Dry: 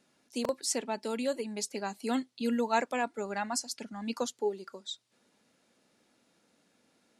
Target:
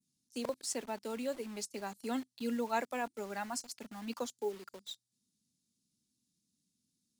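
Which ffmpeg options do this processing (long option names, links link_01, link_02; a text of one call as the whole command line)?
ffmpeg -i in.wav -filter_complex "[0:a]adynamicequalizer=threshold=0.00251:dfrequency=4700:dqfactor=1.2:tfrequency=4700:tqfactor=1.2:attack=5:release=100:ratio=0.375:range=2.5:mode=cutabove:tftype=bell,acrossover=split=230|4200[link_01][link_02][link_03];[link_02]acrusher=bits=7:mix=0:aa=0.000001[link_04];[link_01][link_04][link_03]amix=inputs=3:normalize=0,volume=-5.5dB" out.wav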